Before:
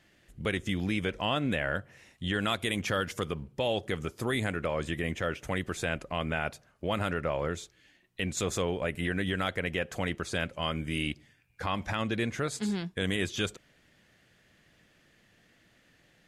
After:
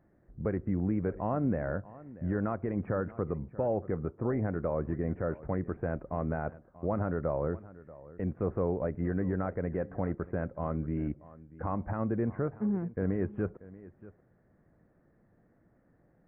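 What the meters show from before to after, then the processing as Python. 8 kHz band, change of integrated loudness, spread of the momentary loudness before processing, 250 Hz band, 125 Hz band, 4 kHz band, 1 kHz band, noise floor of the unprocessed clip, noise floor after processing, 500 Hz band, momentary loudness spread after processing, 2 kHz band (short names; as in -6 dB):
under -35 dB, -1.5 dB, 6 LU, +1.5 dB, +1.5 dB, under -40 dB, -3.5 dB, -65 dBFS, -67 dBFS, +0.5 dB, 8 LU, -13.5 dB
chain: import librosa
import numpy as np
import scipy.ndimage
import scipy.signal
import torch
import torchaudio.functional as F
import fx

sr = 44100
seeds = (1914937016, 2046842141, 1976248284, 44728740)

p1 = scipy.ndimage.gaussian_filter1d(x, 7.5, mode='constant')
p2 = p1 + fx.echo_single(p1, sr, ms=635, db=-18.5, dry=0)
y = p2 * librosa.db_to_amplitude(1.5)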